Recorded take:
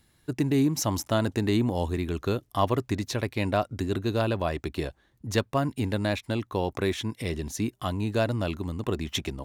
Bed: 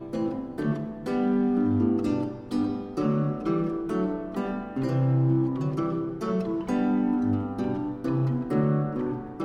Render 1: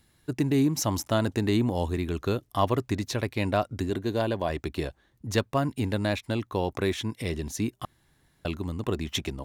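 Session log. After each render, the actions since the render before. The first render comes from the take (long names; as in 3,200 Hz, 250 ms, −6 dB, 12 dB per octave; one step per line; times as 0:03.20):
0:03.90–0:04.50: notch comb filter 1,300 Hz
0:07.85–0:08.45: fill with room tone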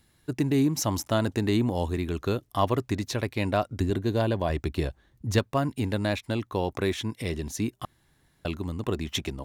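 0:03.80–0:05.39: low-shelf EQ 150 Hz +8 dB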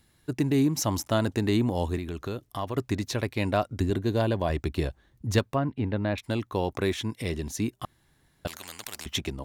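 0:01.98–0:02.77: downward compressor 2 to 1, threshold −33 dBFS
0:05.55–0:06.18: high-frequency loss of the air 370 metres
0:08.47–0:09.06: every bin compressed towards the loudest bin 10 to 1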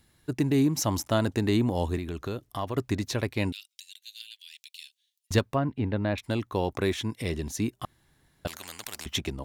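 0:03.52–0:05.31: Butterworth high-pass 2,800 Hz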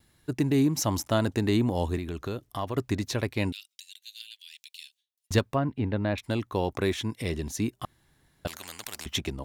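noise gate with hold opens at −58 dBFS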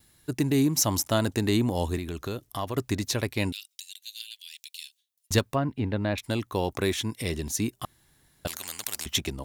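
high-shelf EQ 4,700 Hz +9.5 dB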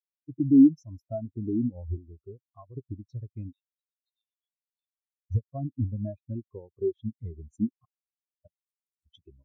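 downward compressor 16 to 1, threshold −26 dBFS, peak gain reduction 10.5 dB
every bin expanded away from the loudest bin 4 to 1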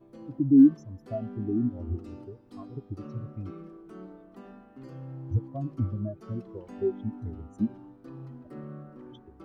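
mix in bed −18 dB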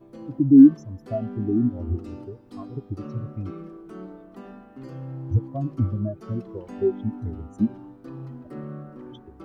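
level +5.5 dB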